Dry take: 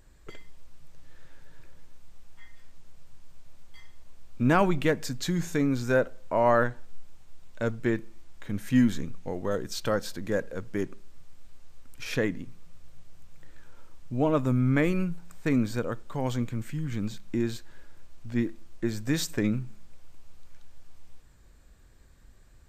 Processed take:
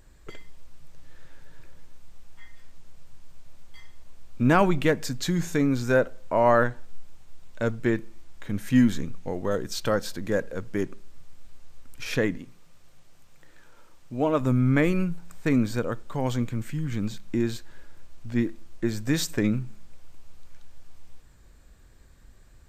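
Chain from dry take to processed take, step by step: 12.37–14.41 s: bass shelf 160 Hz -11.5 dB; trim +2.5 dB

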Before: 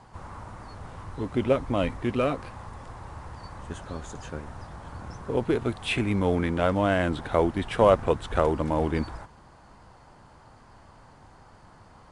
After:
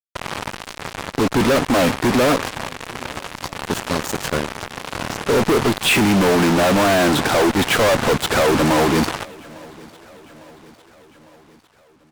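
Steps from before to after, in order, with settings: high-pass 150 Hz 12 dB/octave; fuzz box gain 45 dB, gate -39 dBFS; feedback delay 853 ms, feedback 58%, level -24 dB

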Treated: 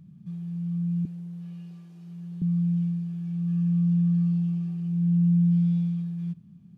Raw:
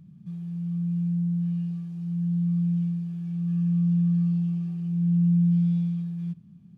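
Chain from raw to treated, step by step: 1.05–2.42 s: high-pass 240 Hz 24 dB/octave

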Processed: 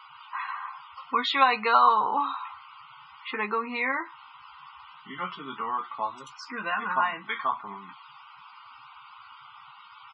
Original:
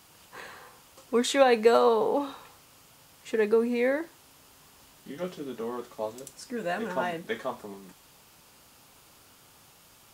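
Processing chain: low-pass 4 kHz 12 dB/octave; resonant low shelf 750 Hz -12 dB, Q 3; band-stop 1.7 kHz, Q 6.2; in parallel at +1 dB: compression, threshold -40 dBFS, peak gain reduction 19 dB; on the sum: loudest bins only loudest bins 64; doubling 15 ms -7.5 dB; trim +3 dB

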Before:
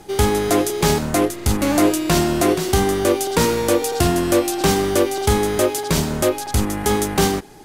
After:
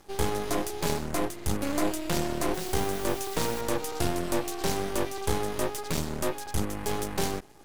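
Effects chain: half-wave rectifier; 2.54–3.61 s: word length cut 6-bit, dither triangular; trim -7.5 dB

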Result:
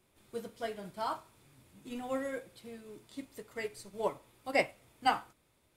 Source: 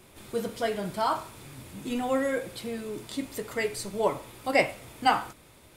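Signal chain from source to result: upward expansion 1.5:1, over -41 dBFS; trim -5 dB

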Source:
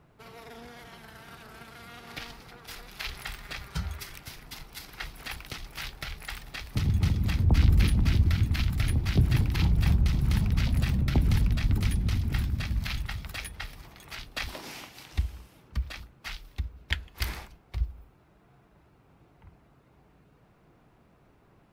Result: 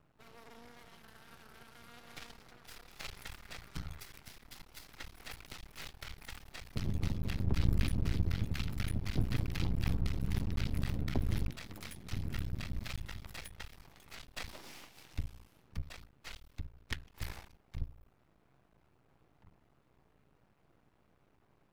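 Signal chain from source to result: 11.50–12.12 s: high-pass 520 Hz 6 dB/octave; half-wave rectifier; trim -5.5 dB

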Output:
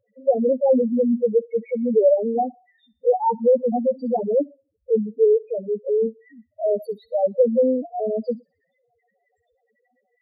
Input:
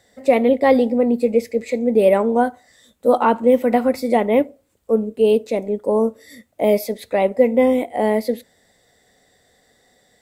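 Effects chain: loudest bins only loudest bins 2; 4.19–5.95 s: level-controlled noise filter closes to 1.3 kHz, open at -14.5 dBFS; feedback echo behind a high-pass 61 ms, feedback 51%, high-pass 3 kHz, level -17 dB

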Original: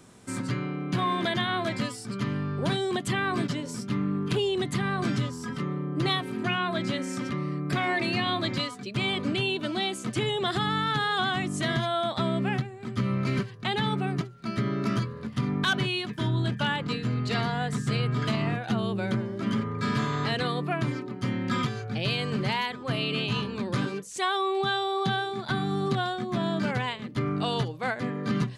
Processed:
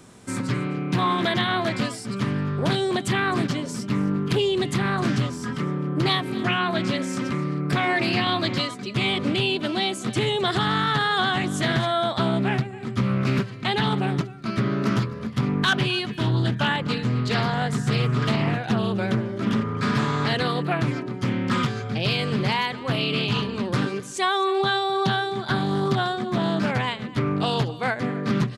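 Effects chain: delay 259 ms -18.5 dB; loudspeaker Doppler distortion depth 0.25 ms; trim +4.5 dB

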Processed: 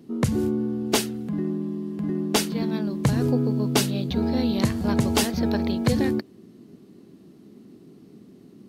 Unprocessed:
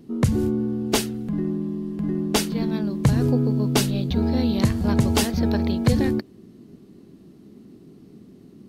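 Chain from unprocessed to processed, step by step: high-pass 150 Hz 6 dB/octave

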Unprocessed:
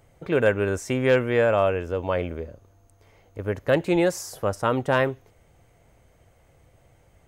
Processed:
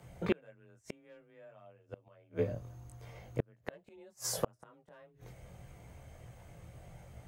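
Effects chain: chorus voices 4, 0.84 Hz, delay 20 ms, depth 1 ms; frequency shift +23 Hz; inverted gate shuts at -23 dBFS, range -40 dB; trim +5.5 dB

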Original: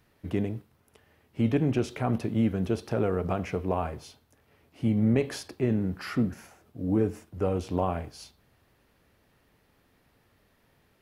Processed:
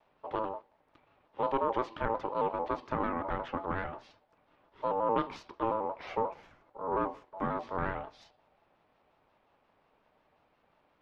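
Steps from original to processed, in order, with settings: single-diode clipper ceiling -25.5 dBFS; ring modulator 720 Hz; distance through air 240 m; vibrato with a chosen wave square 5.6 Hz, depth 100 cents

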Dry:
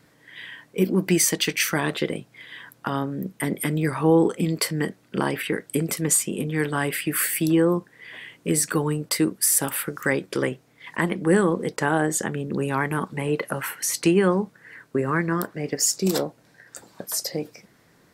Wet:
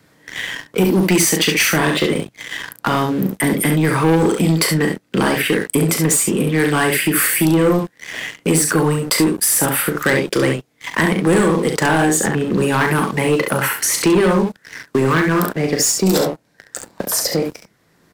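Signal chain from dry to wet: early reflections 38 ms -8.5 dB, 68 ms -6.5 dB; waveshaping leveller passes 3; three bands compressed up and down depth 40%; trim -2.5 dB

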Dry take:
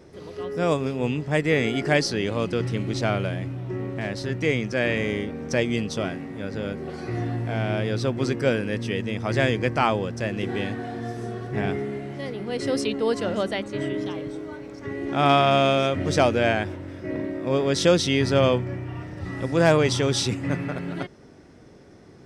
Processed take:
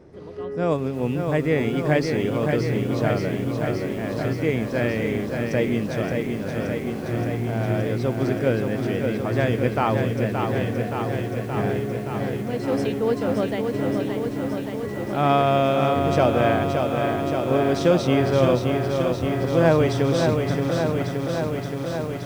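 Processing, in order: treble shelf 2.2 kHz -12 dB; bit-crushed delay 573 ms, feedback 80%, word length 8-bit, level -5 dB; trim +1 dB

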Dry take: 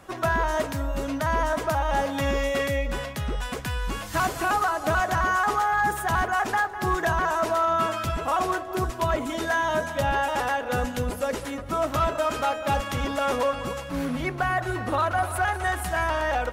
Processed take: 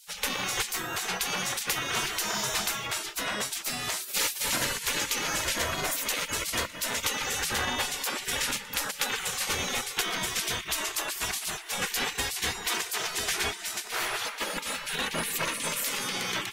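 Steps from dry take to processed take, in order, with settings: 12.53–14.64 s: octave divider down 2 oct, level -3 dB; spectral gate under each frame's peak -25 dB weak; in parallel at -2 dB: peak limiter -32.5 dBFS, peak gain reduction 9 dB; on the sum: trim +7.5 dB

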